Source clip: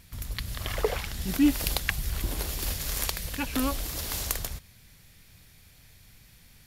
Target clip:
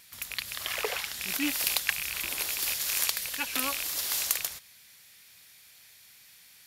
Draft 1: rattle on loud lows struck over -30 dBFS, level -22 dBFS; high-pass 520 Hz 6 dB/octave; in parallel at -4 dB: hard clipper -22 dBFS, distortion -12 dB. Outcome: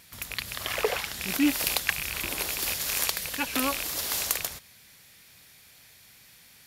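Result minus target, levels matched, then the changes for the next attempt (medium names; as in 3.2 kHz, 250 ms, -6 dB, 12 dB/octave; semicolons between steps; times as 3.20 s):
500 Hz band +6.5 dB
change: high-pass 1.7 kHz 6 dB/octave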